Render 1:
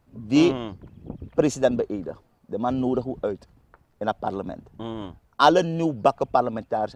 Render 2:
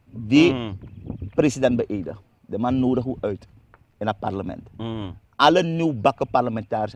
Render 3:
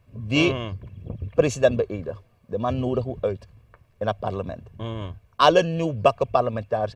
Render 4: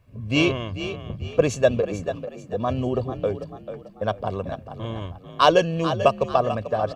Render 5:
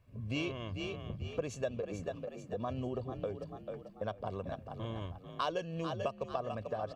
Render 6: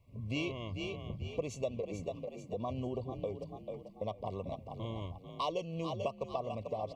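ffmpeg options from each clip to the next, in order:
-af "equalizer=f=100:t=o:w=0.67:g=10,equalizer=f=250:t=o:w=0.67:g=4,equalizer=f=2500:t=o:w=0.67:g=9"
-af "aecho=1:1:1.8:0.59,volume=0.841"
-filter_complex "[0:a]asplit=5[s0][s1][s2][s3][s4];[s1]adelay=441,afreqshift=41,volume=0.282[s5];[s2]adelay=882,afreqshift=82,volume=0.0989[s6];[s3]adelay=1323,afreqshift=123,volume=0.0347[s7];[s4]adelay=1764,afreqshift=164,volume=0.012[s8];[s0][s5][s6][s7][s8]amix=inputs=5:normalize=0"
-af "acompressor=threshold=0.0398:ratio=3,volume=0.422"
-af "asuperstop=centerf=1500:order=20:qfactor=2"

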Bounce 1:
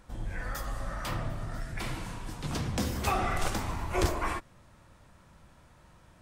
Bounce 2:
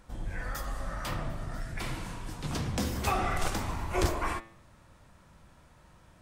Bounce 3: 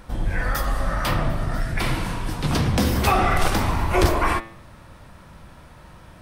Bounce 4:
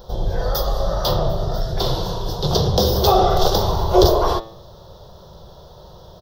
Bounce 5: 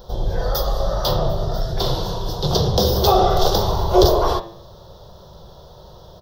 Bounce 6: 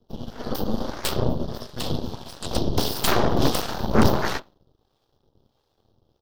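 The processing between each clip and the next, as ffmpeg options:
-af "bandreject=f=111.7:t=h:w=4,bandreject=f=223.4:t=h:w=4,bandreject=f=335.1:t=h:w=4,bandreject=f=446.8:t=h:w=4,bandreject=f=558.5:t=h:w=4,bandreject=f=670.2:t=h:w=4,bandreject=f=781.9:t=h:w=4,bandreject=f=893.6:t=h:w=4,bandreject=f=1005.3:t=h:w=4,bandreject=f=1117:t=h:w=4,bandreject=f=1228.7:t=h:w=4,bandreject=f=1340.4:t=h:w=4,bandreject=f=1452.1:t=h:w=4,bandreject=f=1563.8:t=h:w=4,bandreject=f=1675.5:t=h:w=4,bandreject=f=1787.2:t=h:w=4,bandreject=f=1898.9:t=h:w=4,bandreject=f=2010.6:t=h:w=4,bandreject=f=2122.3:t=h:w=4,bandreject=f=2234:t=h:w=4,bandreject=f=2345.7:t=h:w=4,bandreject=f=2457.4:t=h:w=4,bandreject=f=2569.1:t=h:w=4,bandreject=f=2680.8:t=h:w=4,bandreject=f=2792.5:t=h:w=4,bandreject=f=2904.2:t=h:w=4,bandreject=f=3015.9:t=h:w=4,bandreject=f=3127.6:t=h:w=4,bandreject=f=3239.3:t=h:w=4,bandreject=f=3351:t=h:w=4,bandreject=f=3462.7:t=h:w=4,bandreject=f=3574.4:t=h:w=4,bandreject=f=3686.1:t=h:w=4,bandreject=f=3797.8:t=h:w=4,bandreject=f=3909.5:t=h:w=4,bandreject=f=4021.2:t=h:w=4,bandreject=f=4132.9:t=h:w=4,bandreject=f=4244.6:t=h:w=4,bandreject=f=4356.3:t=h:w=4"
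-filter_complex "[0:a]equalizer=f=7100:w=2.3:g=-7,asplit=2[s0][s1];[s1]alimiter=level_in=1.06:limit=0.0631:level=0:latency=1:release=65,volume=0.944,volume=1[s2];[s0][s2]amix=inputs=2:normalize=0,volume=2.11"
-af "firequalizer=gain_entry='entry(180,0);entry(270,-15);entry(380,9);entry(590,7);entry(2300,-25);entry(3400,7);entry(5600,7);entry(8600,-18);entry(15000,9)':delay=0.05:min_phase=1,volume=1.26"
-af "bandreject=f=85.81:t=h:w=4,bandreject=f=171.62:t=h:w=4,bandreject=f=257.43:t=h:w=4,bandreject=f=343.24:t=h:w=4,bandreject=f=429.05:t=h:w=4,bandreject=f=514.86:t=h:w=4,bandreject=f=600.67:t=h:w=4,bandreject=f=686.48:t=h:w=4,bandreject=f=772.29:t=h:w=4,bandreject=f=858.1:t=h:w=4,bandreject=f=943.91:t=h:w=4,bandreject=f=1029.72:t=h:w=4,bandreject=f=1115.53:t=h:w=4,bandreject=f=1201.34:t=h:w=4,bandreject=f=1287.15:t=h:w=4,bandreject=f=1372.96:t=h:w=4,bandreject=f=1458.77:t=h:w=4,bandreject=f=1544.58:t=h:w=4,bandreject=f=1630.39:t=h:w=4,bandreject=f=1716.2:t=h:w=4,bandreject=f=1802.01:t=h:w=4,bandreject=f=1887.82:t=h:w=4,bandreject=f=1973.63:t=h:w=4,bandreject=f=2059.44:t=h:w=4,bandreject=f=2145.25:t=h:w=4,bandreject=f=2231.06:t=h:w=4,bandreject=f=2316.87:t=h:w=4,bandreject=f=2402.68:t=h:w=4,bandreject=f=2488.49:t=h:w=4,bandreject=f=2574.3:t=h:w=4,bandreject=f=2660.11:t=h:w=4,bandreject=f=2745.92:t=h:w=4,bandreject=f=2831.73:t=h:w=4"
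-filter_complex "[0:a]afreqshift=-150,acrossover=split=490[s0][s1];[s0]aeval=exprs='val(0)*(1-0.7/2+0.7/2*cos(2*PI*1.5*n/s))':c=same[s2];[s1]aeval=exprs='val(0)*(1-0.7/2-0.7/2*cos(2*PI*1.5*n/s))':c=same[s3];[s2][s3]amix=inputs=2:normalize=0,aeval=exprs='0.794*(cos(1*acos(clip(val(0)/0.794,-1,1)))-cos(1*PI/2))+0.1*(cos(7*acos(clip(val(0)/0.794,-1,1)))-cos(7*PI/2))+0.282*(cos(8*acos(clip(val(0)/0.794,-1,1)))-cos(8*PI/2))':c=same,volume=0.501"

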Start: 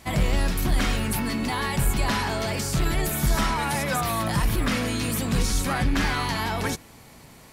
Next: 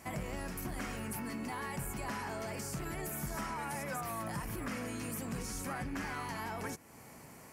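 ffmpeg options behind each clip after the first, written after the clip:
-af "highpass=f=140:p=1,equalizer=f=3700:w=2.2:g=-13,acompressor=threshold=0.00891:ratio=2,volume=0.708"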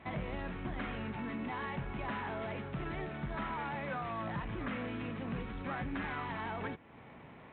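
-af "volume=1.12" -ar 8000 -c:a adpcm_ima_wav

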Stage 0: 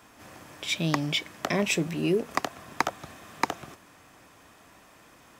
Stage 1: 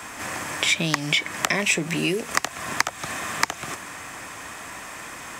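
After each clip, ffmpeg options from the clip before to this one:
-filter_complex "[0:a]asplit=2[s0][s1];[s1]acompressor=threshold=0.0178:ratio=6,volume=1.26[s2];[s0][s2]amix=inputs=2:normalize=0,equalizer=f=1000:t=o:w=1:g=4,equalizer=f=2000:t=o:w=1:g=8,equalizer=f=8000:t=o:w=1:g=10,acrossover=split=110|2200[s3][s4][s5];[s3]acompressor=threshold=0.002:ratio=4[s6];[s4]acompressor=threshold=0.0355:ratio=4[s7];[s5]acompressor=threshold=0.0398:ratio=4[s8];[s6][s7][s8]amix=inputs=3:normalize=0,volume=1.78"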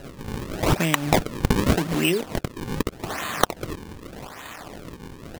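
-af "aresample=8000,aeval=exprs='sgn(val(0))*max(abs(val(0))-0.00531,0)':c=same,aresample=44100,acrusher=samples=38:mix=1:aa=0.000001:lfo=1:lforange=60.8:lforate=0.84,volume=1.41"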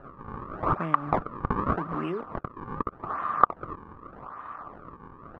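-af "lowpass=f=1200:t=q:w=7.5,volume=0.335"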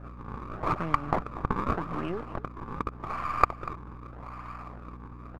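-af "aeval=exprs='if(lt(val(0),0),0.447*val(0),val(0))':c=same,aeval=exprs='val(0)+0.00708*(sin(2*PI*60*n/s)+sin(2*PI*2*60*n/s)/2+sin(2*PI*3*60*n/s)/3+sin(2*PI*4*60*n/s)/4+sin(2*PI*5*60*n/s)/5)':c=same,aecho=1:1:241:0.141"

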